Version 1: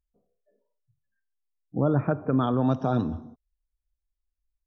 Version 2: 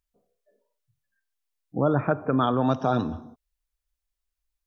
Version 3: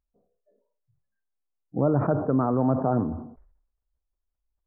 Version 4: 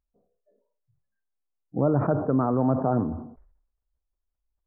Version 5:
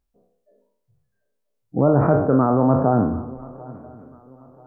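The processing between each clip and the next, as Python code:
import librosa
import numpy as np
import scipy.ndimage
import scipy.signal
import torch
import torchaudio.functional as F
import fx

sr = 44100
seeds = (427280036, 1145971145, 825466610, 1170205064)

y1 = fx.low_shelf(x, sr, hz=470.0, db=-9.0)
y1 = F.gain(torch.from_numpy(y1), 6.5).numpy()
y2 = scipy.ndimage.gaussian_filter1d(y1, 7.6, mode='constant')
y2 = fx.sustainer(y2, sr, db_per_s=81.0)
y2 = F.gain(torch.from_numpy(y2), 1.0).numpy()
y3 = y2
y4 = fx.spec_trails(y3, sr, decay_s=0.61)
y4 = fx.echo_swing(y4, sr, ms=986, ratio=3, feedback_pct=32, wet_db=-21.5)
y4 = F.gain(torch.from_numpy(y4), 5.0).numpy()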